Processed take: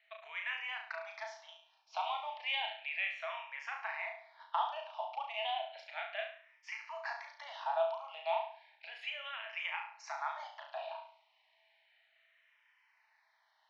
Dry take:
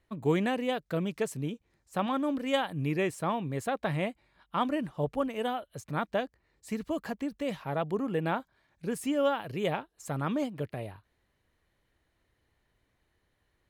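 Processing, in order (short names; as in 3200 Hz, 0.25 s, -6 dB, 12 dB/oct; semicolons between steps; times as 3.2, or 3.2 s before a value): elliptic low-pass 5600 Hz, stop band 40 dB; compressor, threshold -37 dBFS, peak gain reduction 14 dB; rippled Chebyshev high-pass 630 Hz, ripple 9 dB; on a send: flutter echo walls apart 6 m, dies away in 0.5 s; on the sum: endless phaser -0.33 Hz; gain +12.5 dB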